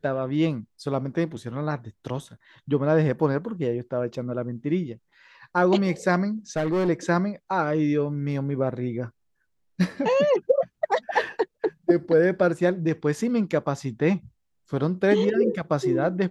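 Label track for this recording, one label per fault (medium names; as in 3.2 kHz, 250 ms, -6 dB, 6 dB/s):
6.560000	6.890000	clipped -20 dBFS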